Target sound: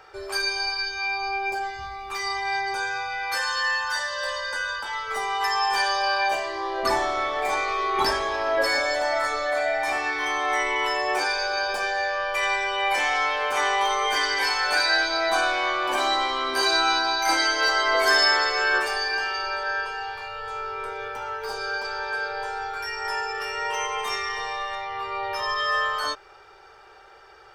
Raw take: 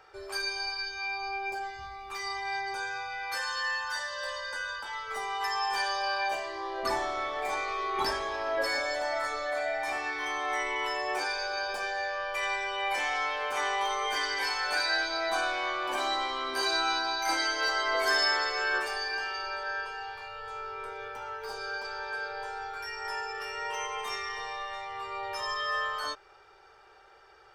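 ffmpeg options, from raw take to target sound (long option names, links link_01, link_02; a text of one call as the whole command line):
ffmpeg -i in.wav -filter_complex "[0:a]asettb=1/sr,asplit=3[link_01][link_02][link_03];[link_01]atrim=end=24.754[link_04];[link_02]atrim=start=24.75:end=25.58,asetpts=PTS-STARTPTS,afade=type=in:duration=0.004:curve=qsin,afade=type=out:start_time=0.826:duration=0.004:curve=qsin,equalizer=frequency=8100:width_type=o:width=0.57:gain=-12.5[link_05];[link_03]atrim=start=25.576[link_06];[link_04][link_05]acrossfade=duration=0.004:curve1=hsin:curve2=qsin[link_07];[link_07][link_06]acrossfade=duration=0.004:curve1=qsin:curve2=hsin,volume=7dB" out.wav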